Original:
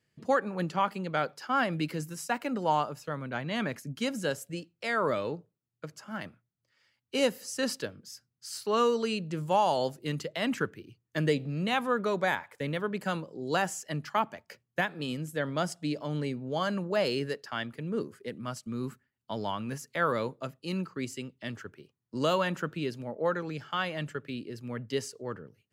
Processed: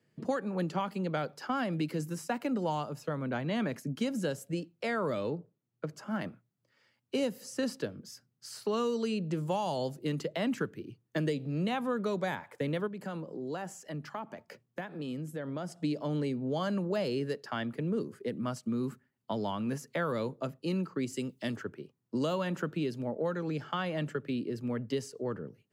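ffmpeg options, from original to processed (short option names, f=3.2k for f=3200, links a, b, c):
-filter_complex "[0:a]asettb=1/sr,asplit=3[a][b][c];[a]atrim=end=5.304[d];[b]atrim=start=5.3:end=5.89,asetpts=PTS-STARTPTS,afade=t=in:d=0.004:c=qsin,afade=t=out:st=0.586:d=0.004:c=qsin,lowpass=f=3.4k:p=1[e];[c]atrim=start=5.886[f];[d][e]acrossfade=d=0.004:c1=hsin:c2=qsin[g];[g][f]acrossfade=d=0.004:c1=qsin:c2=hsin,asettb=1/sr,asplit=3[h][i][j];[h]atrim=end=12.874[k];[i]atrim=start=12.87:end=15.79,asetpts=PTS-STARTPTS,afade=t=in:d=0.004:c=qsin,afade=t=out:st=2.916:d=0.004:c=qsin,acompressor=threshold=-45dB:ratio=2.5:attack=3.2:release=140:knee=1:detection=peak[l];[j]atrim=start=15.786[m];[k][l]acrossfade=d=0.004:c1=hsin:c2=qsin[n];[n][m]acrossfade=d=0.004:c1=qsin:c2=hsin,asplit=3[o][p][q];[o]afade=t=out:st=21.13:d=0.02[r];[p]bass=f=250:g=-1,treble=f=4k:g=14,afade=t=in:st=21.13:d=0.02,afade=t=out:st=21.55:d=0.02[s];[q]afade=t=in:st=21.55:d=0.02[t];[r][s][t]amix=inputs=3:normalize=0,highpass=140,tiltshelf=f=1.1k:g=5.5,acrossover=split=180|2800[u][v][w];[u]acompressor=threshold=-43dB:ratio=4[x];[v]acompressor=threshold=-35dB:ratio=4[y];[w]acompressor=threshold=-47dB:ratio=4[z];[x][y][z]amix=inputs=3:normalize=0,volume=3dB"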